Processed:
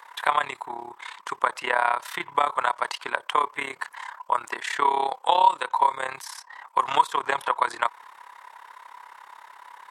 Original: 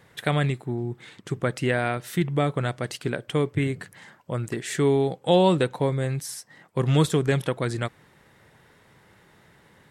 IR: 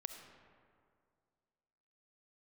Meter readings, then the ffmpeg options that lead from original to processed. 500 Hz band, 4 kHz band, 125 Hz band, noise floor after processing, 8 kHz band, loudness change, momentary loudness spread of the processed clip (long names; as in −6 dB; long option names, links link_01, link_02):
−8.0 dB, +0.5 dB, below −30 dB, −53 dBFS, −4.0 dB, 0.0 dB, 14 LU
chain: -filter_complex "[0:a]highpass=frequency=980:width_type=q:width=8.5,tremolo=f=34:d=0.824,acrossover=split=1300|4700[link_01][link_02][link_03];[link_01]acompressor=threshold=-27dB:ratio=4[link_04];[link_02]acompressor=threshold=-36dB:ratio=4[link_05];[link_03]acompressor=threshold=-53dB:ratio=4[link_06];[link_04][link_05][link_06]amix=inputs=3:normalize=0,volume=8dB"